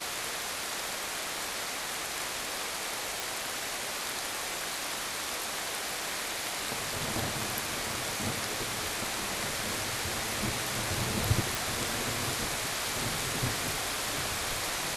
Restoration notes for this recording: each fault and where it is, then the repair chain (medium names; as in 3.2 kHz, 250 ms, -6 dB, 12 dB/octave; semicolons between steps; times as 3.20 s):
3.20 s: pop
11.55 s: pop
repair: de-click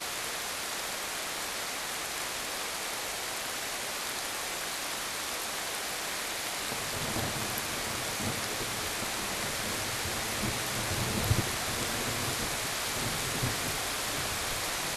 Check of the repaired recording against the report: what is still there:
nothing left